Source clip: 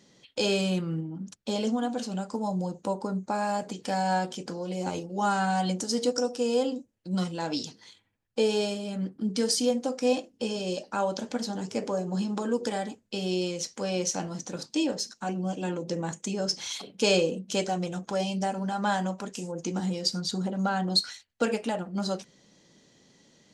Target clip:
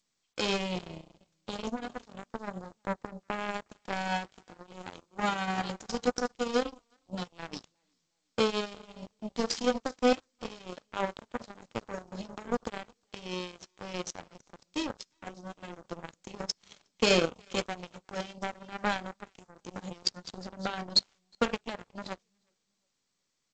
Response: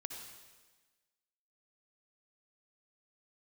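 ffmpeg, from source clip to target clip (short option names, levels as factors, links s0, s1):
-af "aecho=1:1:362|724|1086:0.211|0.0528|0.0132,aeval=exprs='0.299*(cos(1*acos(clip(val(0)/0.299,-1,1)))-cos(1*PI/2))+0.00422*(cos(3*acos(clip(val(0)/0.299,-1,1)))-cos(3*PI/2))+0.00188*(cos(4*acos(clip(val(0)/0.299,-1,1)))-cos(4*PI/2))+0.0422*(cos(7*acos(clip(val(0)/0.299,-1,1)))-cos(7*PI/2))':c=same" -ar 16000 -c:a g722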